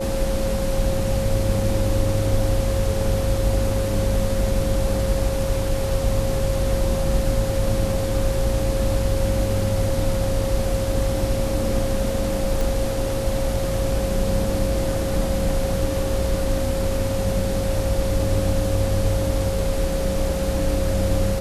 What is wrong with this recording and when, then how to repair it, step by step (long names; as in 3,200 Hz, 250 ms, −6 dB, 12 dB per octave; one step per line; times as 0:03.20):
whistle 540 Hz −25 dBFS
0:12.61: click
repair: click removal
notch filter 540 Hz, Q 30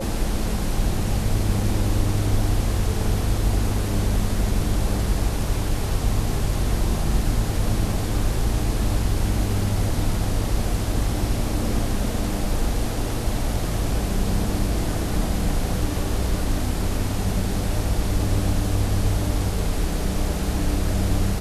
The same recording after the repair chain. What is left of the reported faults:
none of them is left